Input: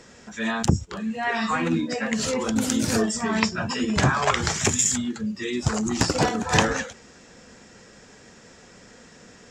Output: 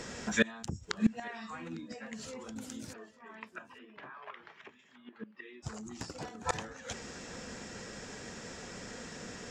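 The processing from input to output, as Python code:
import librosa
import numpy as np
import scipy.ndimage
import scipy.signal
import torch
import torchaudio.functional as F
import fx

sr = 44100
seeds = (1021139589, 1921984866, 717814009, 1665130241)

y = fx.rider(x, sr, range_db=5, speed_s=0.5)
y = fx.gate_flip(y, sr, shuts_db=-19.0, range_db=-26)
y = fx.cabinet(y, sr, low_hz=470.0, low_slope=12, high_hz=2700.0, hz=(520.0, 750.0, 1400.0, 2200.0), db=(-4, -7, -4, -3), at=(2.92, 5.62), fade=0.02)
y = y + 10.0 ** (-23.5 / 20.0) * np.pad(y, (int(853 * sr / 1000.0), 0))[:len(y)]
y = y * 10.0 ** (6.0 / 20.0)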